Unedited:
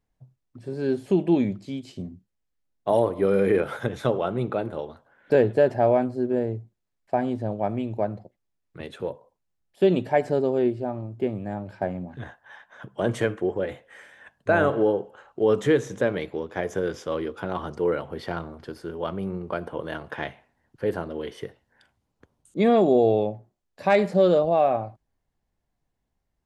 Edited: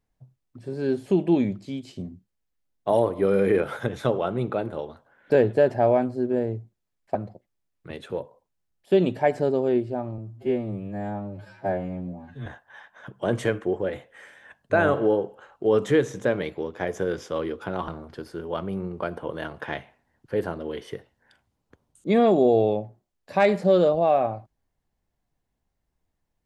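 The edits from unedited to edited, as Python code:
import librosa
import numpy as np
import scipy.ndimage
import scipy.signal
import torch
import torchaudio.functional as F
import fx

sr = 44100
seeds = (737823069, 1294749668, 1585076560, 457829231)

y = fx.edit(x, sr, fx.cut(start_s=7.15, length_s=0.9),
    fx.stretch_span(start_s=11.08, length_s=1.14, factor=2.0),
    fx.cut(start_s=17.64, length_s=0.74), tone=tone)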